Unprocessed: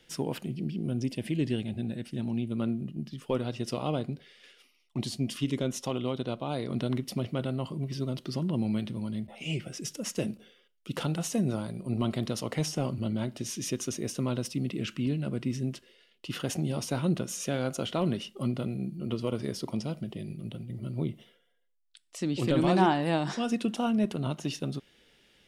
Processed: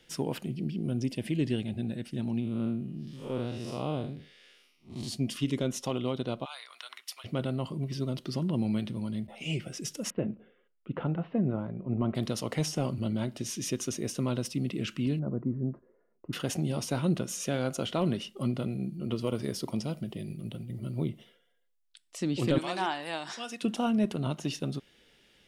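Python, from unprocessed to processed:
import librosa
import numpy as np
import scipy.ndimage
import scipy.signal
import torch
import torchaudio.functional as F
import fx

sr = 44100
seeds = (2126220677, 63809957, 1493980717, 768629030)

y = fx.spec_blur(x, sr, span_ms=141.0, at=(2.39, 5.07), fade=0.02)
y = fx.highpass(y, sr, hz=1100.0, slope=24, at=(6.44, 7.24), fade=0.02)
y = fx.gaussian_blur(y, sr, sigma=4.2, at=(10.1, 12.15))
y = fx.cheby2_lowpass(y, sr, hz=3000.0, order=4, stop_db=50, at=(15.19, 16.33))
y = fx.high_shelf(y, sr, hz=11000.0, db=8.5, at=(19.16, 21.09))
y = fx.highpass(y, sr, hz=1400.0, slope=6, at=(22.58, 23.63))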